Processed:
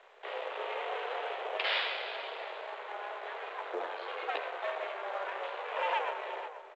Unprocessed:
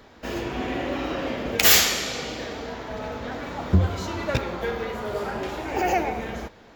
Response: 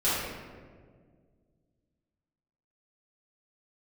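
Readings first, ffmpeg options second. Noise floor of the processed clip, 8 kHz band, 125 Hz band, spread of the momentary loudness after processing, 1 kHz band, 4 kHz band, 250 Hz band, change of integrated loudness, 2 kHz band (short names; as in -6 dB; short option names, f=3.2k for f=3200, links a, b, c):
-50 dBFS, under -40 dB, under -40 dB, 9 LU, -6.0 dB, -12.5 dB, -27.0 dB, -12.0 dB, -8.0 dB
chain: -filter_complex "[0:a]aeval=exprs='(tanh(2.24*val(0)+0.35)-tanh(0.35))/2.24':c=same,aresample=11025,aeval=exprs='max(val(0),0)':c=same,aresample=44100,highpass=f=260:t=q:w=0.5412,highpass=f=260:t=q:w=1.307,lowpass=f=3.4k:t=q:w=0.5176,lowpass=f=3.4k:t=q:w=0.7071,lowpass=f=3.4k:t=q:w=1.932,afreqshift=170,asplit=2[a][b];[b]adelay=480,lowpass=f=1.1k:p=1,volume=-10dB,asplit=2[c][d];[d]adelay=480,lowpass=f=1.1k:p=1,volume=0.16[e];[a][c][e]amix=inputs=3:normalize=0,volume=-1.5dB" -ar 16000 -c:a pcm_mulaw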